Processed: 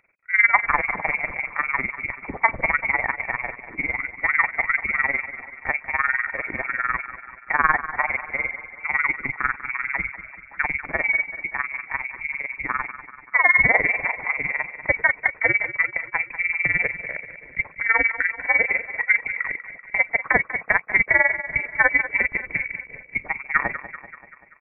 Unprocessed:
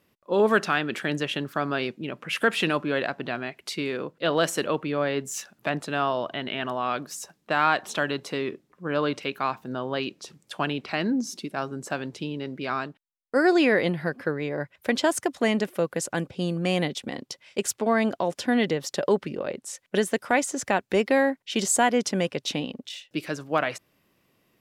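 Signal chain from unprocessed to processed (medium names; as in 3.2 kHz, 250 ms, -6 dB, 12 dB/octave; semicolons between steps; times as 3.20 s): AM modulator 20 Hz, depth 75%; feedback delay 193 ms, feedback 57%, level -13 dB; frequency inversion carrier 2.5 kHz; trim +6.5 dB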